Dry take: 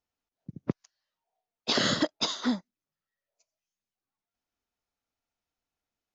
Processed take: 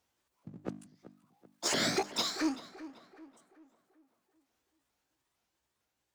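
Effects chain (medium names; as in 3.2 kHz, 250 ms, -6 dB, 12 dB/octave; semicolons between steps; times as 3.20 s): sawtooth pitch modulation +7 st, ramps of 444 ms; Doppler pass-by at 2.13 s, 10 m/s, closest 9 m; high-pass 50 Hz; hum notches 50/100/150/200/250/300 Hz; on a send: tape echo 384 ms, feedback 35%, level -20 dB, low-pass 2.1 kHz; on the sum: power-law waveshaper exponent 0.7; trim -5.5 dB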